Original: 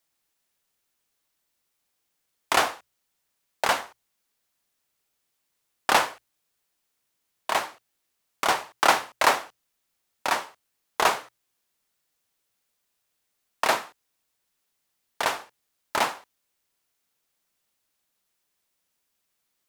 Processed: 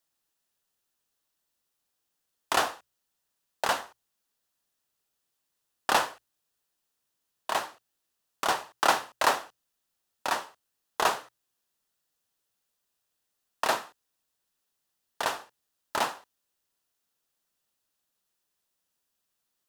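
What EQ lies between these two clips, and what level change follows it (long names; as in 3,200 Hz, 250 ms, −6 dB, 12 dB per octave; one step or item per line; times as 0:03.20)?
parametric band 2,200 Hz −8 dB 0.21 octaves
−3.5 dB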